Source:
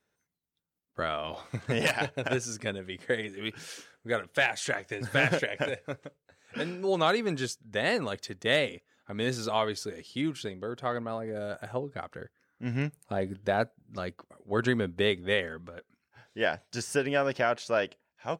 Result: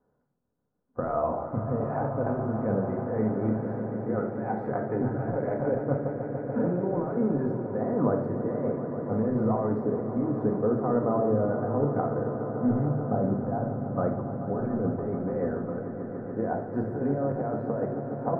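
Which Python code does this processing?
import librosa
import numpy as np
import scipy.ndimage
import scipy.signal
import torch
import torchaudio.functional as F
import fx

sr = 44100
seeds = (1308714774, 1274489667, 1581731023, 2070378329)

y = fx.over_compress(x, sr, threshold_db=-33.0, ratio=-1.0)
y = scipy.signal.sosfilt(scipy.signal.cheby2(4, 50, 2800.0, 'lowpass', fs=sr, output='sos'), y)
y = fx.echo_swell(y, sr, ms=145, loudest=5, wet_db=-13.0)
y = fx.room_shoebox(y, sr, seeds[0], volume_m3=1000.0, walls='furnished', distance_m=1.9)
y = F.gain(torch.from_numpy(y), 4.0).numpy()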